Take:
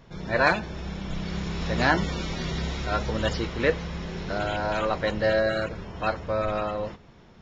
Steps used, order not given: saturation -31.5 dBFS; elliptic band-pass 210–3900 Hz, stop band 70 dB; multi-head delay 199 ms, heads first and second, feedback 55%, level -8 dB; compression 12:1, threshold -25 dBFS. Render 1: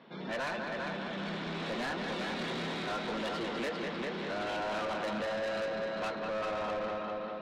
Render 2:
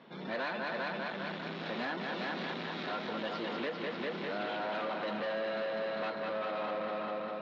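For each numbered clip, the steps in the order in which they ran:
elliptic band-pass > compression > multi-head delay > saturation; multi-head delay > compression > saturation > elliptic band-pass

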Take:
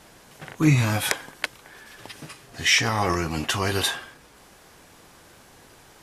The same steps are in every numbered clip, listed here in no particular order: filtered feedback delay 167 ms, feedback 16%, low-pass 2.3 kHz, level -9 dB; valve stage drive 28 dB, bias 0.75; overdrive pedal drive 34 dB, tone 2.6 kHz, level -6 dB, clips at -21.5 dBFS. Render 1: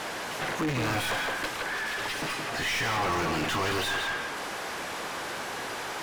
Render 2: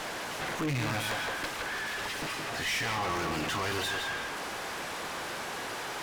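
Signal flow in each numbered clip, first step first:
valve stage > filtered feedback delay > overdrive pedal; filtered feedback delay > overdrive pedal > valve stage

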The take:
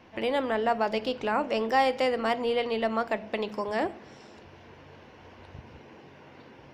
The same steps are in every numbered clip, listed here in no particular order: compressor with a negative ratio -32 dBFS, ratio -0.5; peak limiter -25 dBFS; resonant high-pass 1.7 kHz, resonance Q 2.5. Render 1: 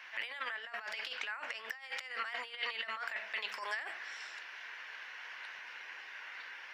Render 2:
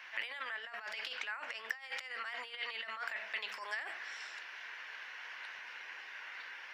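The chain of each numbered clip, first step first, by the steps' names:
compressor with a negative ratio > resonant high-pass > peak limiter; compressor with a negative ratio > peak limiter > resonant high-pass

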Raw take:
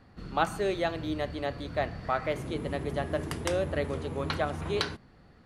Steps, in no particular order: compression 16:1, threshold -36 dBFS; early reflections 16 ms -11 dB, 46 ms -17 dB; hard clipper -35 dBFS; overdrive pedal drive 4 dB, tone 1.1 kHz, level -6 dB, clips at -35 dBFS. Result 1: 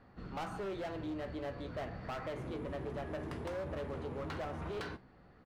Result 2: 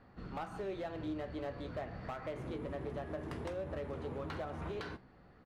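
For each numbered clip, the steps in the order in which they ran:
overdrive pedal > hard clipper > early reflections > compression; overdrive pedal > compression > hard clipper > early reflections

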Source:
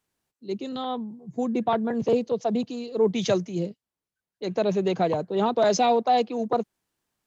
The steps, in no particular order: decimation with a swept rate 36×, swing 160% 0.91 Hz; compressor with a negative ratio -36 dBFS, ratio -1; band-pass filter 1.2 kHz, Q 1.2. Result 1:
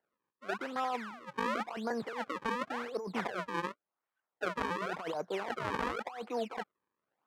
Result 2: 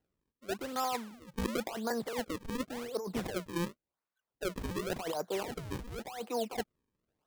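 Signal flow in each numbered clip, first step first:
decimation with a swept rate > band-pass filter > compressor with a negative ratio; band-pass filter > decimation with a swept rate > compressor with a negative ratio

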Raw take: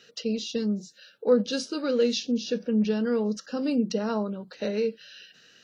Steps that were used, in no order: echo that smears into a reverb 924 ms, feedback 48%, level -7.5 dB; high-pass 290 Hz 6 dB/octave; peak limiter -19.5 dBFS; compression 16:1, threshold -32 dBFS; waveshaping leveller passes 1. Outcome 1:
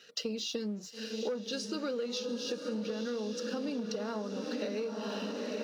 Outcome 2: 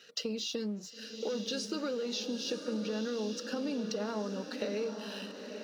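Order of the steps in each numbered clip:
echo that smears into a reverb > waveshaping leveller > high-pass > compression > peak limiter; waveshaping leveller > high-pass > peak limiter > compression > echo that smears into a reverb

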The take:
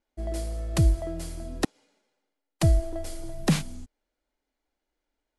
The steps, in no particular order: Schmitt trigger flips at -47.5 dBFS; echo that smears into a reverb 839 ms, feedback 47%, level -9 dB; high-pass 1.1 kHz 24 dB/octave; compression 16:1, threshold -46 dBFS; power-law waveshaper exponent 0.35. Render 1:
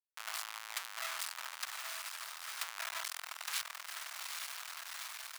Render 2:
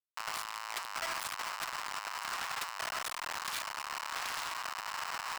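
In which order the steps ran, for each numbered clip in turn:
Schmitt trigger > compression > echo that smears into a reverb > power-law waveshaper > high-pass; echo that smears into a reverb > Schmitt trigger > high-pass > compression > power-law waveshaper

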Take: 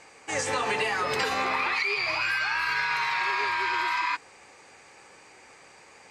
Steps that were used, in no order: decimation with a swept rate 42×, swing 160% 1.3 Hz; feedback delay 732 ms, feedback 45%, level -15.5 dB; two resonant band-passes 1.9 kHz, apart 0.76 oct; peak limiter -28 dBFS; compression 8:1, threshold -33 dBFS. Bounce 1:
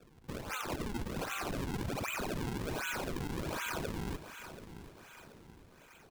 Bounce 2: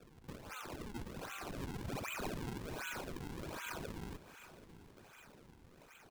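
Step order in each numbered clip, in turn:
two resonant band-passes > decimation with a swept rate > feedback delay > peak limiter > compression; peak limiter > compression > two resonant band-passes > decimation with a swept rate > feedback delay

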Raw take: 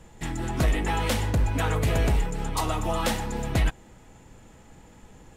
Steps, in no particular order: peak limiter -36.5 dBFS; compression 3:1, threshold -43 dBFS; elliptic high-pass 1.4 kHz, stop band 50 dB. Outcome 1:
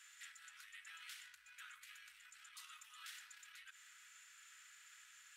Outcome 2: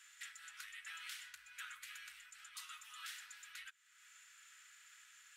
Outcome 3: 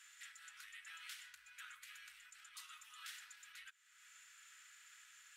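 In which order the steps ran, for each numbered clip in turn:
peak limiter > compression > elliptic high-pass; compression > elliptic high-pass > peak limiter; compression > peak limiter > elliptic high-pass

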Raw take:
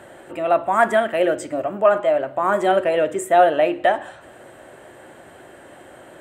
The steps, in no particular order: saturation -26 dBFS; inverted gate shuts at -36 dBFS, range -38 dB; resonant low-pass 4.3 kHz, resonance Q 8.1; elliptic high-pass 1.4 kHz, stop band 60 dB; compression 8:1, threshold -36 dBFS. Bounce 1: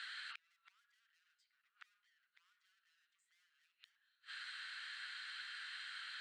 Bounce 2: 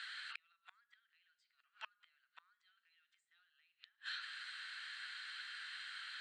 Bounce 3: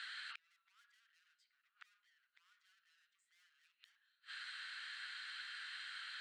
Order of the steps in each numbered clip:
resonant low-pass > saturation > elliptic high-pass > compression > inverted gate; elliptic high-pass > compression > saturation > inverted gate > resonant low-pass; resonant low-pass > saturation > elliptic high-pass > inverted gate > compression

